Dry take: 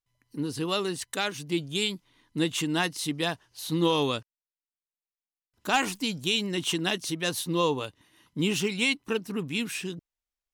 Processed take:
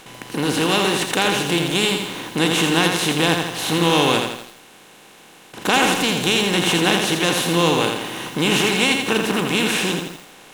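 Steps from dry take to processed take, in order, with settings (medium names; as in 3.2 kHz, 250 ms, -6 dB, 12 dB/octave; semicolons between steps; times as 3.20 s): spectral levelling over time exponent 0.4; bit-crushed delay 83 ms, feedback 55%, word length 7-bit, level -4.5 dB; trim +2.5 dB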